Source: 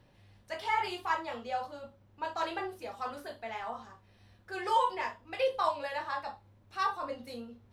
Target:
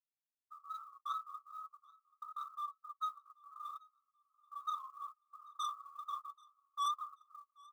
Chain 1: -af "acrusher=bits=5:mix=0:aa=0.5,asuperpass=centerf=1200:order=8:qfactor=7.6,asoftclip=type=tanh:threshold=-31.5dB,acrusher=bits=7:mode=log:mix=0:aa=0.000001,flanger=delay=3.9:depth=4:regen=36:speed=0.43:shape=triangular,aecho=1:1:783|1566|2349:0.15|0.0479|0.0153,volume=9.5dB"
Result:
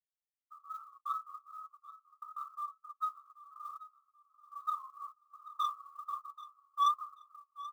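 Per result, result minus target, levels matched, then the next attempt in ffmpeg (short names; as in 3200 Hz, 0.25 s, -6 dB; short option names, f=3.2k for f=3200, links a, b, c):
echo-to-direct +8.5 dB; soft clip: distortion -7 dB
-af "acrusher=bits=5:mix=0:aa=0.5,asuperpass=centerf=1200:order=8:qfactor=7.6,asoftclip=type=tanh:threshold=-31.5dB,acrusher=bits=7:mode=log:mix=0:aa=0.000001,flanger=delay=3.9:depth=4:regen=36:speed=0.43:shape=triangular,aecho=1:1:783|1566:0.0562|0.018,volume=9.5dB"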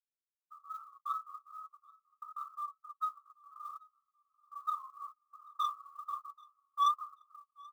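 soft clip: distortion -7 dB
-af "acrusher=bits=5:mix=0:aa=0.5,asuperpass=centerf=1200:order=8:qfactor=7.6,asoftclip=type=tanh:threshold=-40.5dB,acrusher=bits=7:mode=log:mix=0:aa=0.000001,flanger=delay=3.9:depth=4:regen=36:speed=0.43:shape=triangular,aecho=1:1:783|1566:0.0562|0.018,volume=9.5dB"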